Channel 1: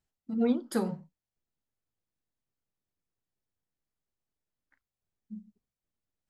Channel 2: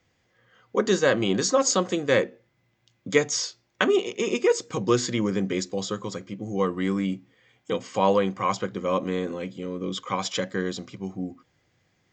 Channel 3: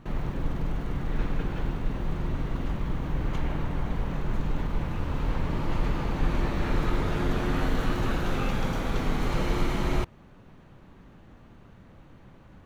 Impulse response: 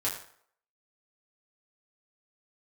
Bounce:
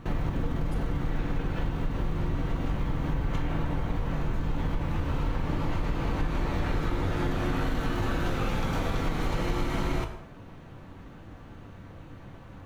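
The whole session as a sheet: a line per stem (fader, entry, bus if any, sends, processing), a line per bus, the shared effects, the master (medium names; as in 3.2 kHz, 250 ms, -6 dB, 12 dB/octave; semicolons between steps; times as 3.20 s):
-10.0 dB, 0.00 s, no send, none
mute
+1.5 dB, 0.00 s, send -6.5 dB, none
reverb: on, RT60 0.60 s, pre-delay 5 ms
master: compression, threshold -24 dBFS, peak gain reduction 10 dB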